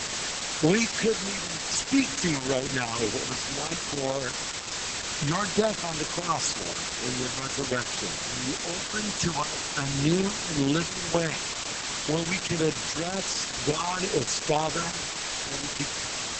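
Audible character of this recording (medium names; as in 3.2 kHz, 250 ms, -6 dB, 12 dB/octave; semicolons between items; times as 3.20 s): phasing stages 8, 2 Hz, lowest notch 410–2100 Hz; random-step tremolo, depth 85%; a quantiser's noise floor 6-bit, dither triangular; Opus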